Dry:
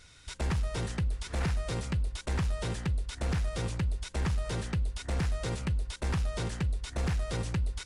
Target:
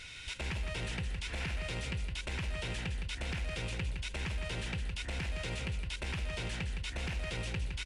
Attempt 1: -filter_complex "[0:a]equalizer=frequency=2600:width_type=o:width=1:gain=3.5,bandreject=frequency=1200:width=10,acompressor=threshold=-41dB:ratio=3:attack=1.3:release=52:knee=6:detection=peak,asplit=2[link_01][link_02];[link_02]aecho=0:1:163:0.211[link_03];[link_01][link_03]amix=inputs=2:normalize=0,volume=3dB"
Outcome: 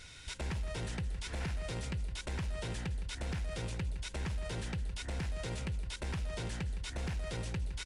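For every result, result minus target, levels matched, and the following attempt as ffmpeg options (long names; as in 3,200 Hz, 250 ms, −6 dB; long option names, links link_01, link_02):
echo-to-direct −6.5 dB; 2,000 Hz band −4.0 dB
-filter_complex "[0:a]equalizer=frequency=2600:width_type=o:width=1:gain=3.5,bandreject=frequency=1200:width=10,acompressor=threshold=-41dB:ratio=3:attack=1.3:release=52:knee=6:detection=peak,asplit=2[link_01][link_02];[link_02]aecho=0:1:163:0.447[link_03];[link_01][link_03]amix=inputs=2:normalize=0,volume=3dB"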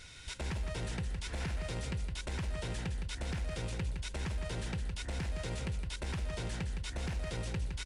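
2,000 Hz band −4.0 dB
-filter_complex "[0:a]equalizer=frequency=2600:width_type=o:width=1:gain=13.5,bandreject=frequency=1200:width=10,acompressor=threshold=-41dB:ratio=3:attack=1.3:release=52:knee=6:detection=peak,asplit=2[link_01][link_02];[link_02]aecho=0:1:163:0.447[link_03];[link_01][link_03]amix=inputs=2:normalize=0,volume=3dB"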